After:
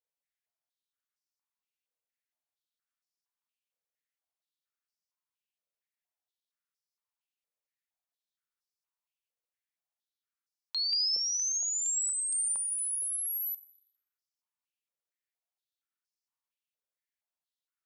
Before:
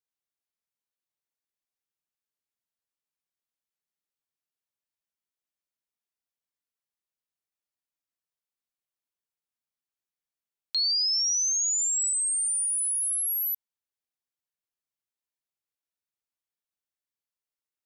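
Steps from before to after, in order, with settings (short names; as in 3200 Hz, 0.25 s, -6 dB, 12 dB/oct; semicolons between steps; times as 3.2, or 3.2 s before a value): FDN reverb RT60 1.3 s, high-frequency decay 0.55×, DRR 11 dB; stepped high-pass 4.3 Hz 500–5100 Hz; gain -6 dB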